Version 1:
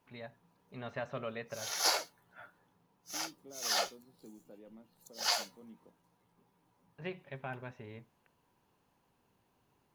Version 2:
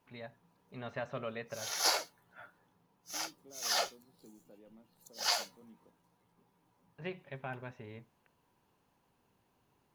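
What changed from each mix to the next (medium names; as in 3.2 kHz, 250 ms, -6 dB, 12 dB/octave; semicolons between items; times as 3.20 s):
second voice -4.0 dB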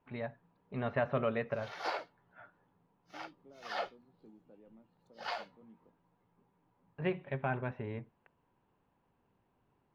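first voice +9.0 dB; background: add peaking EQ 13 kHz -6 dB 0.42 oct; master: add distance through air 420 m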